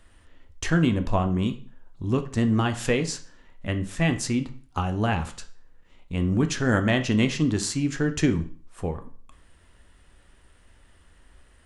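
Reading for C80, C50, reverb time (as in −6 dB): 18.0 dB, 13.5 dB, 0.45 s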